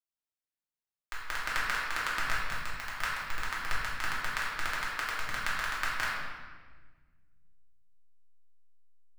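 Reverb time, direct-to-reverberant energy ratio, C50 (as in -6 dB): 1.4 s, -8.0 dB, 0.0 dB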